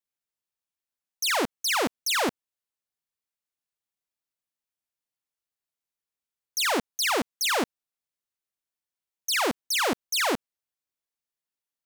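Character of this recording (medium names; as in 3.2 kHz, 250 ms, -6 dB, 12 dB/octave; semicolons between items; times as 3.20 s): noise floor -92 dBFS; spectral tilt -2.0 dB/octave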